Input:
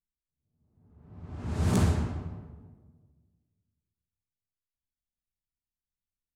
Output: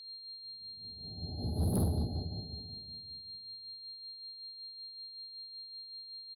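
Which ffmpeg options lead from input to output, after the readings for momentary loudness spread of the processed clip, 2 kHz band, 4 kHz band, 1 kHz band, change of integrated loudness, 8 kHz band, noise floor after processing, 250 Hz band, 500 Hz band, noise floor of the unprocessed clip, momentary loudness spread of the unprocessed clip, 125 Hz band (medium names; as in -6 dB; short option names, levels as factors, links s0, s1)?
12 LU, under -25 dB, +11.5 dB, -8.5 dB, -10.0 dB, -4.5 dB, -50 dBFS, -4.5 dB, -4.0 dB, under -85 dBFS, 20 LU, -4.5 dB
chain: -filter_complex "[0:a]afftfilt=real='re*(1-between(b*sr/4096,860,9900))':imag='im*(1-between(b*sr/4096,860,9900))':win_size=4096:overlap=0.75,highshelf=f=6900:t=q:w=3:g=7.5,aeval=exprs='val(0)+0.00447*sin(2*PI*4200*n/s)':c=same,equalizer=f=8900:w=2.8:g=4,asplit=2[s0][s1];[s1]acompressor=threshold=0.01:ratio=8,volume=0.794[s2];[s0][s2]amix=inputs=2:normalize=0,tremolo=f=5.3:d=0.41,asoftclip=type=tanh:threshold=0.0631,asplit=2[s3][s4];[s4]adelay=380,lowpass=f=1800:p=1,volume=0.0708,asplit=2[s5][s6];[s6]adelay=380,lowpass=f=1800:p=1,volume=0.42,asplit=2[s7][s8];[s8]adelay=380,lowpass=f=1800:p=1,volume=0.42[s9];[s3][s5][s7][s9]amix=inputs=4:normalize=0,volume=0.891"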